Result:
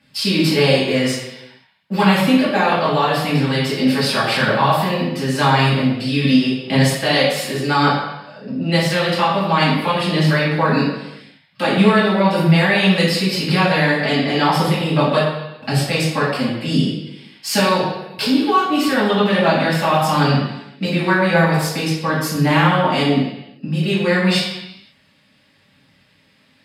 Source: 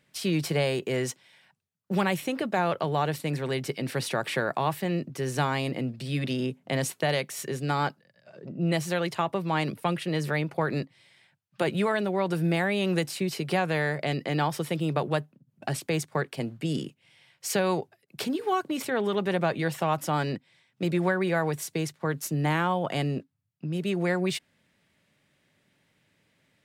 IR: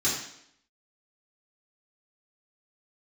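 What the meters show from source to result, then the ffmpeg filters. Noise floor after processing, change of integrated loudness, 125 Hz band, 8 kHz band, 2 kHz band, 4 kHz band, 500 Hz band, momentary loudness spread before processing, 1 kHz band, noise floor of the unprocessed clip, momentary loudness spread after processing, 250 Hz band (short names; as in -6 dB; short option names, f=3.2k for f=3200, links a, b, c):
-56 dBFS, +11.5 dB, +11.0 dB, +7.0 dB, +12.5 dB, +15.5 dB, +10.0 dB, 7 LU, +12.0 dB, -71 dBFS, 8 LU, +12.5 dB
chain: -filter_complex "[0:a]lowshelf=f=340:g=-4.5,aphaser=in_gain=1:out_gain=1:delay=4.8:decay=0.36:speed=0.89:type=triangular[a];[1:a]atrim=start_sample=2205,afade=t=out:st=0.45:d=0.01,atrim=end_sample=20286,asetrate=31311,aresample=44100[b];[a][b]afir=irnorm=-1:irlink=0,volume=-1dB"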